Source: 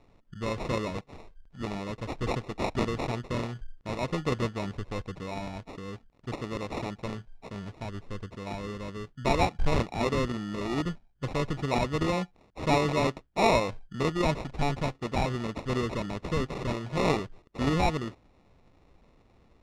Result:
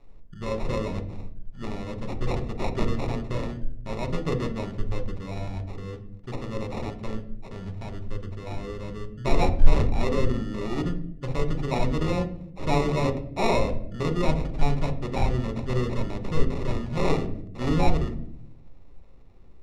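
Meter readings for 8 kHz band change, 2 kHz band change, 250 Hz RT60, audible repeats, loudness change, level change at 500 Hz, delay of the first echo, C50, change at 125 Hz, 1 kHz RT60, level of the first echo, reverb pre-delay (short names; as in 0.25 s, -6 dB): -2.0 dB, -1.5 dB, 1.0 s, none, +2.0 dB, +1.5 dB, none, 11.5 dB, +4.5 dB, 0.60 s, none, 5 ms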